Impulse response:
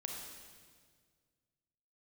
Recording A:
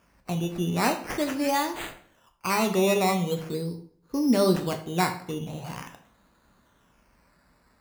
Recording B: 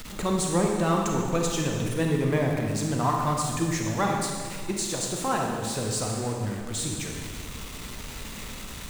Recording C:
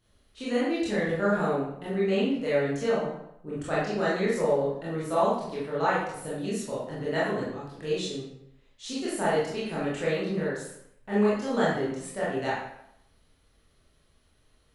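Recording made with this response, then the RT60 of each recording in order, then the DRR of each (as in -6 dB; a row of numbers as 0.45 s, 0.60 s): B; 0.55 s, 1.8 s, 0.75 s; 5.0 dB, 0.5 dB, -9.0 dB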